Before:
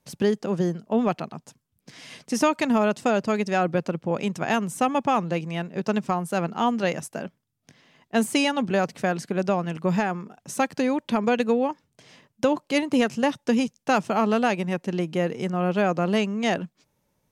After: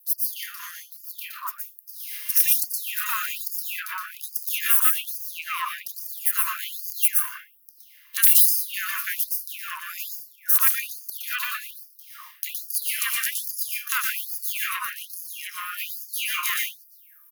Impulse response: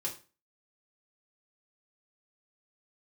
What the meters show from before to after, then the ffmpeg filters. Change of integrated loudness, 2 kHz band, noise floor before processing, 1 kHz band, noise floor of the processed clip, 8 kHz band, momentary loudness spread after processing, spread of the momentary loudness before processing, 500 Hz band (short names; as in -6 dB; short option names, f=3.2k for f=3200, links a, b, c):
+2.0 dB, +0.5 dB, -75 dBFS, -9.0 dB, -54 dBFS, +12.5 dB, 17 LU, 8 LU, under -40 dB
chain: -filter_complex "[0:a]aeval=exprs='if(lt(val(0),0),0.251*val(0),val(0))':c=same,acrossover=split=210[a][b];[b]aexciter=amount=14.9:drive=7.7:freq=11k[c];[a][c]amix=inputs=2:normalize=0,aeval=exprs='(mod(2.66*val(0)+1,2)-1)/2.66':c=same,acrossover=split=1200|3800[d][e][f];[e]adelay=30[g];[d]adelay=380[h];[h][g][f]amix=inputs=3:normalize=0,asplit=2[i][j];[1:a]atrim=start_sample=2205,adelay=116[k];[j][k]afir=irnorm=-1:irlink=0,volume=-2dB[l];[i][l]amix=inputs=2:normalize=0,afftfilt=real='re*gte(b*sr/1024,940*pow(4600/940,0.5+0.5*sin(2*PI*1.2*pts/sr)))':imag='im*gte(b*sr/1024,940*pow(4600/940,0.5+0.5*sin(2*PI*1.2*pts/sr)))':win_size=1024:overlap=0.75,volume=6dB"